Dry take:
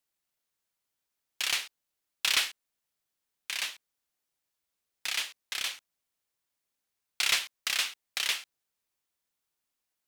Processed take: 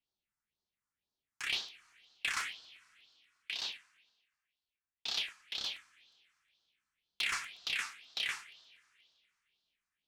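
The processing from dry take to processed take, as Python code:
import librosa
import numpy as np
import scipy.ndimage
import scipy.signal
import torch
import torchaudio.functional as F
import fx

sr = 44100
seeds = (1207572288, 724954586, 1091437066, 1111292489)

y = scipy.signal.sosfilt(scipy.signal.butter(2, 5400.0, 'lowpass', fs=sr, output='sos'), x)
y = fx.notch(y, sr, hz=550.0, q=12.0)
y = fx.rev_double_slope(y, sr, seeds[0], early_s=0.38, late_s=2.8, knee_db=-22, drr_db=5.0)
y = fx.phaser_stages(y, sr, stages=4, low_hz=520.0, high_hz=2100.0, hz=2.0, feedback_pct=35)
y = 10.0 ** (-22.0 / 20.0) * np.tanh(y / 10.0 ** (-22.0 / 20.0))
y = fx.buffer_crackle(y, sr, first_s=0.72, period_s=0.12, block=128, kind='repeat')
y = fx.band_widen(y, sr, depth_pct=40, at=(3.63, 5.19))
y = y * 10.0 ** (-2.0 / 20.0)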